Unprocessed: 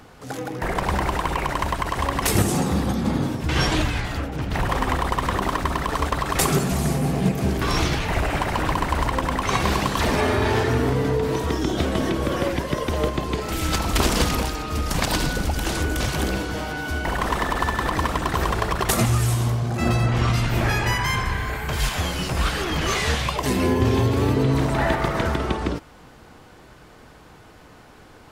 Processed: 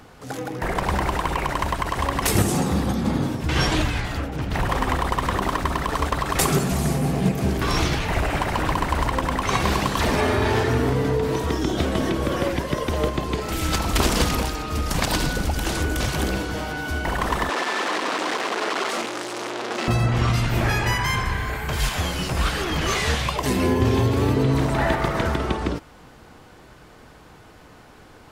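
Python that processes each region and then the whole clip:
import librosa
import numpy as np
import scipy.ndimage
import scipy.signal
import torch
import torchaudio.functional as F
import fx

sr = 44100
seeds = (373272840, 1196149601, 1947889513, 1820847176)

y = fx.chain(x, sr, fx.clip_1bit(),
    fx.highpass(hz=280.0, slope=24),
    fx.air_absorb(metres=89.0), at=(17.49, 19.88))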